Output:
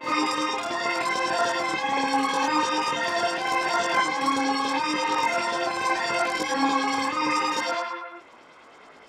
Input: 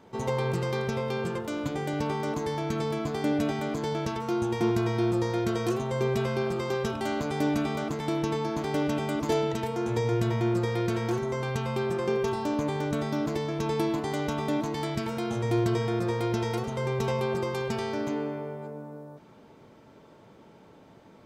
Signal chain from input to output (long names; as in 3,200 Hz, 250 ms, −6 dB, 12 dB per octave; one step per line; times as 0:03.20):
auto-filter low-pass saw up 4 Hz 420–3,700 Hz
on a send: backwards echo 113 ms −6 dB
on the sum: wrong playback speed 33 rpm record played at 78 rpm
dynamic equaliser 5,300 Hz, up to +5 dB, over −50 dBFS, Q 1.4
micro pitch shift up and down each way 27 cents
level +4.5 dB